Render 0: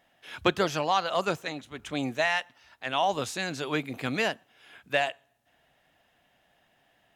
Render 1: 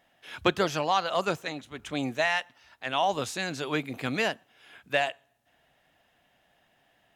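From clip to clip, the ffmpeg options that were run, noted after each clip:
-af anull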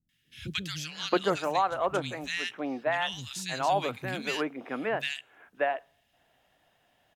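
-filter_complex "[0:a]acrossover=split=210|2000[s0][s1][s2];[s2]adelay=90[s3];[s1]adelay=670[s4];[s0][s4][s3]amix=inputs=3:normalize=0"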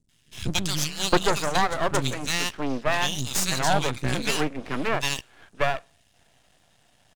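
-af "bass=f=250:g=9,treble=f=4000:g=12,aresample=22050,aresample=44100,aeval=exprs='max(val(0),0)':c=same,volume=2.37"

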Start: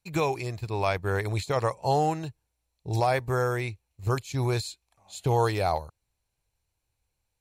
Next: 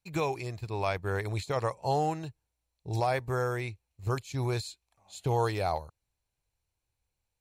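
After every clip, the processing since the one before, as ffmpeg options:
-af "highshelf=f=11000:g=-3,volume=0.631"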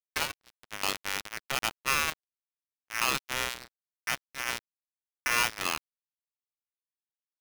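-af "aeval=exprs='val(0)+0.00282*sin(2*PI*1600*n/s)':c=same,aresample=8000,acrusher=bits=3:mix=0:aa=0.5,aresample=44100,aeval=exprs='val(0)*sgn(sin(2*PI*1900*n/s))':c=same"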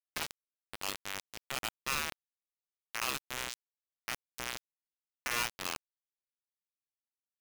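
-af "acrusher=bits=3:mix=0:aa=0.000001,volume=0.398"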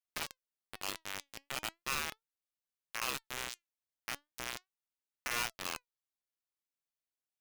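-af "flanger=delay=1.3:depth=2.4:regen=89:speed=0.37:shape=triangular,volume=1.33"

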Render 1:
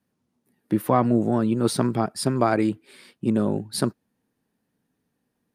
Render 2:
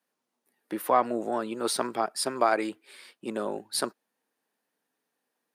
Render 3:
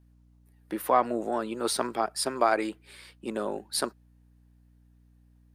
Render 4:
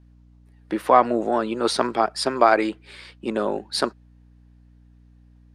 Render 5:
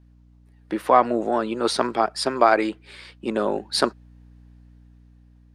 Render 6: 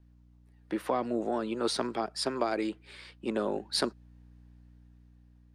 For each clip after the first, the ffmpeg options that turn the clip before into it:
-af "highpass=540"
-af "aeval=exprs='val(0)+0.00126*(sin(2*PI*60*n/s)+sin(2*PI*2*60*n/s)/2+sin(2*PI*3*60*n/s)/3+sin(2*PI*4*60*n/s)/4+sin(2*PI*5*60*n/s)/5)':c=same"
-af "lowpass=5700,volume=2.37"
-af "dynaudnorm=f=250:g=9:m=3.76,volume=0.891"
-filter_complex "[0:a]acrossover=split=450|3000[s0][s1][s2];[s1]acompressor=threshold=0.0501:ratio=6[s3];[s0][s3][s2]amix=inputs=3:normalize=0,volume=0.501"

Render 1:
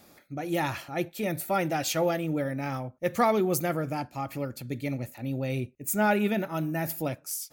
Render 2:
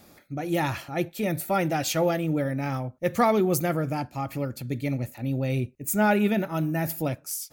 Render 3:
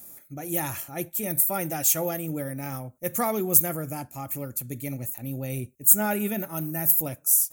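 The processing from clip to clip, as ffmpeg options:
-af "lowshelf=f=180:g=5.5,volume=1.19"
-af "aexciter=amount=5.4:drive=8.6:freq=6500,volume=0.531"

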